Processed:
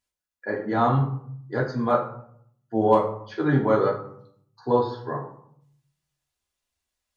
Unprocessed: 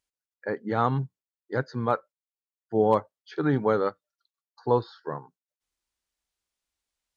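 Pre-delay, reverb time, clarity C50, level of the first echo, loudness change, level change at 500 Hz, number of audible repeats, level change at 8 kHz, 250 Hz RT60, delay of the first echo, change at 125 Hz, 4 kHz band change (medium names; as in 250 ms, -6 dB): 3 ms, 0.65 s, 8.0 dB, no echo, +3.0 dB, +3.0 dB, no echo, no reading, 0.95 s, no echo, +4.5 dB, +2.5 dB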